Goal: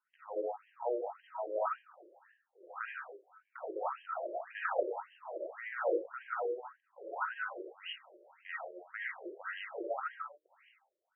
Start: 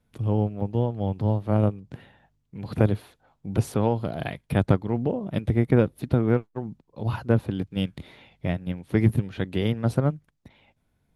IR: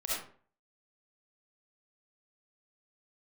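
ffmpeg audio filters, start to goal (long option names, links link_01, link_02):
-filter_complex "[0:a]highpass=150,equalizer=frequency=280:width_type=q:width=4:gain=-9,equalizer=frequency=430:width_type=q:width=4:gain=-6,equalizer=frequency=620:width_type=q:width=4:gain=-7,equalizer=frequency=1300:width_type=q:width=4:gain=6,equalizer=frequency=2300:width_type=q:width=4:gain=-7,lowpass=frequency=3400:width=0.5412,lowpass=frequency=3400:width=1.3066[link_01];[1:a]atrim=start_sample=2205,afade=type=out:start_time=0.34:duration=0.01,atrim=end_sample=15435[link_02];[link_01][link_02]afir=irnorm=-1:irlink=0,afftfilt=real='re*between(b*sr/1024,430*pow(2300/430,0.5+0.5*sin(2*PI*1.8*pts/sr))/1.41,430*pow(2300/430,0.5+0.5*sin(2*PI*1.8*pts/sr))*1.41)':imag='im*between(b*sr/1024,430*pow(2300/430,0.5+0.5*sin(2*PI*1.8*pts/sr))/1.41,430*pow(2300/430,0.5+0.5*sin(2*PI*1.8*pts/sr))*1.41)':win_size=1024:overlap=0.75,volume=-2.5dB"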